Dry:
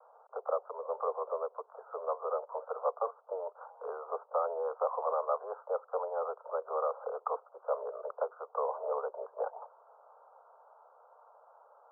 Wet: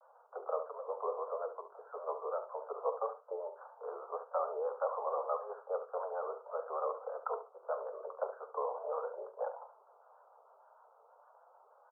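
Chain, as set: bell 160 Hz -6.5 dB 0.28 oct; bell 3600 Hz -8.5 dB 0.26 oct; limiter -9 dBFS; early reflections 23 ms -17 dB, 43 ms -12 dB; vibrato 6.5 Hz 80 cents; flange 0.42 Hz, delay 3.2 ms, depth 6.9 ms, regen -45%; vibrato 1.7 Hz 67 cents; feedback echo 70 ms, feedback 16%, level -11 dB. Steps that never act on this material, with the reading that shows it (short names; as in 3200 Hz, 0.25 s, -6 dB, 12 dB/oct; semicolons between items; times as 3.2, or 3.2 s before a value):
bell 160 Hz: input band starts at 360 Hz; bell 3600 Hz: input band ends at 1500 Hz; limiter -9 dBFS: input peak -18.0 dBFS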